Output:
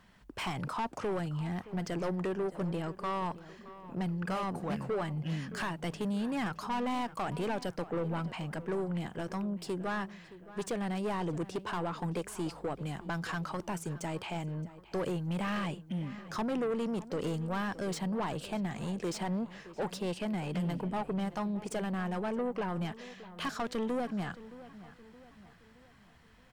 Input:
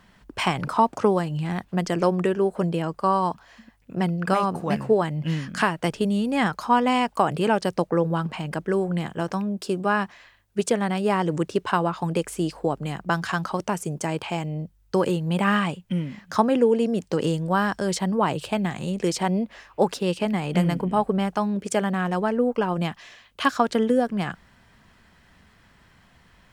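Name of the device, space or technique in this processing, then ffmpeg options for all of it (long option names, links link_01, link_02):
saturation between pre-emphasis and de-emphasis: -filter_complex "[0:a]highshelf=frequency=3100:gain=10.5,asoftclip=type=tanh:threshold=-23dB,highshelf=frequency=3100:gain=-10.5,asplit=2[link_01][link_02];[link_02]adelay=620,lowpass=frequency=3100:poles=1,volume=-16dB,asplit=2[link_03][link_04];[link_04]adelay=620,lowpass=frequency=3100:poles=1,volume=0.48,asplit=2[link_05][link_06];[link_06]adelay=620,lowpass=frequency=3100:poles=1,volume=0.48,asplit=2[link_07][link_08];[link_08]adelay=620,lowpass=frequency=3100:poles=1,volume=0.48[link_09];[link_01][link_03][link_05][link_07][link_09]amix=inputs=5:normalize=0,volume=-6dB"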